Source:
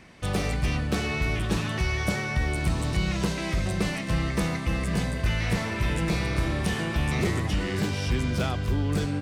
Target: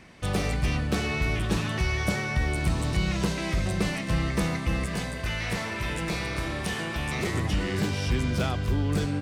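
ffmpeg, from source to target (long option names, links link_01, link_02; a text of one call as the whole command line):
ffmpeg -i in.wav -filter_complex "[0:a]asettb=1/sr,asplit=3[link_01][link_02][link_03];[link_01]atrim=end=4.864[link_04];[link_02]atrim=start=4.86:end=7.34,asetpts=PTS-STARTPTS,afade=type=in:duration=0.004:curve=qsin,afade=type=out:start_time=2.476:duration=0.004:curve=qsin,lowshelf=frequency=340:gain=-7[link_05];[link_03]atrim=start=7.336[link_06];[link_04][link_05]acrossfade=duration=0.004:curve1=hsin:curve2=qsin[link_07];[link_07][link_06]acrossfade=duration=0.004:curve1=qsin:curve2=hsin" out.wav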